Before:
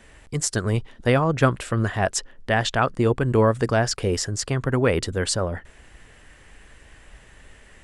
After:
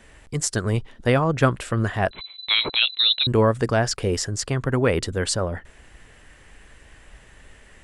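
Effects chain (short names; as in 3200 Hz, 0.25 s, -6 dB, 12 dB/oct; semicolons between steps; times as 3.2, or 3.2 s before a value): 2.11–3.27 inverted band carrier 4000 Hz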